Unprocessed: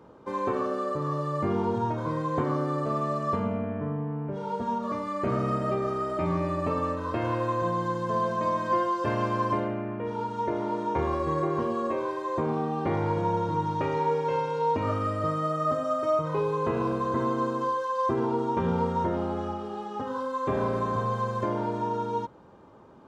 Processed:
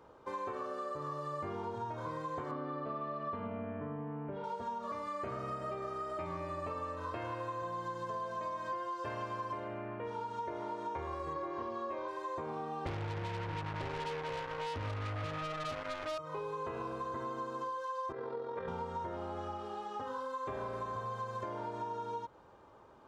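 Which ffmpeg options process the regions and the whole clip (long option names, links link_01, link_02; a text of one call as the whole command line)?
ffmpeg -i in.wav -filter_complex "[0:a]asettb=1/sr,asplit=3[link_01][link_02][link_03];[link_01]atrim=end=2.514[link_04];[link_02]atrim=start=2.51:end=4.44,asetpts=PTS-STARTPTS,afade=type=in:duration=0.004:curve=qsin,afade=type=out:start_time=1.926:duration=0.004:curve=qsin,lowpass=frequency=3700:width=0.5412,lowpass=frequency=3700:width=1.3066,equalizer=frequency=250:width=3.7:gain=10.5[link_05];[link_03]atrim=start=4.436[link_06];[link_04][link_05]acrossfade=duration=0.004:curve1=hsin:curve2=qsin[link_07];[link_07][link_06]acrossfade=duration=0.004:curve1=qsin:curve2=hsin,asettb=1/sr,asplit=3[link_08][link_09][link_10];[link_08]atrim=end=11.334[link_11];[link_09]atrim=start=11.33:end=12.08,asetpts=PTS-STARTPTS,afade=type=in:duration=0.004:curve=qsin,afade=type=out:start_time=0.746:duration=0.004:curve=qsin,lowpass=frequency=5900:width=0.5412,lowpass=frequency=5900:width=1.3066,asplit=2[link_12][link_13];[link_13]adelay=29,volume=-4dB[link_14];[link_12][link_14]amix=inputs=2:normalize=0,atrim=end_sample=33075[link_15];[link_10]atrim=start=12.076[link_16];[link_11][link_15]acrossfade=duration=0.004:curve1=hsin:curve2=qsin[link_17];[link_17][link_16]acrossfade=duration=0.004:curve1=qsin:curve2=hsin,asettb=1/sr,asplit=3[link_18][link_19][link_20];[link_18]atrim=end=12.864[link_21];[link_19]atrim=start=12.86:end=16.18,asetpts=PTS-STARTPTS,afade=type=in:duration=0.004:curve=qsin,afade=type=out:start_time=3.316:duration=0.004:curve=qsin,aemphasis=mode=reproduction:type=riaa,acrusher=bits=3:mix=0:aa=0.5[link_22];[link_20]atrim=start=16.176[link_23];[link_21][link_22]acrossfade=duration=0.004:curve1=hsin:curve2=qsin[link_24];[link_24][link_23]acrossfade=duration=0.004:curve1=qsin:curve2=hsin,asettb=1/sr,asplit=3[link_25][link_26][link_27];[link_25]atrim=end=18.124[link_28];[link_26]atrim=start=18.12:end=18.68,asetpts=PTS-STARTPTS,afade=type=in:duration=0.004:curve=qsin,afade=type=out:start_time=0.556:duration=0.004:curve=qsin,tremolo=f=43:d=0.519,highpass=140,equalizer=frequency=200:width_type=q:width=4:gain=-8,equalizer=frequency=330:width_type=q:width=4:gain=-8,equalizer=frequency=500:width_type=q:width=4:gain=9,equalizer=frequency=880:width_type=q:width=4:gain=-9,equalizer=frequency=1800:width_type=q:width=4:gain=5,equalizer=frequency=2900:width_type=q:width=4:gain=-9,lowpass=frequency=4300:width=0.5412,lowpass=frequency=4300:width=1.3066[link_29];[link_27]atrim=start=18.676[link_30];[link_28][link_29]acrossfade=duration=0.004:curve1=hsin:curve2=qsin[link_31];[link_31][link_30]acrossfade=duration=0.004:curve1=qsin:curve2=hsin,equalizer=frequency=200:width_type=o:width=1.8:gain=-11,acompressor=threshold=-34dB:ratio=6,volume=-2.5dB" out.wav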